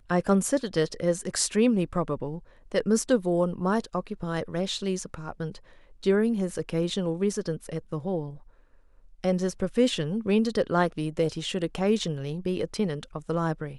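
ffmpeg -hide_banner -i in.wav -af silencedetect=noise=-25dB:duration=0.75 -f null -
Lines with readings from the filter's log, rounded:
silence_start: 8.21
silence_end: 9.24 | silence_duration: 1.03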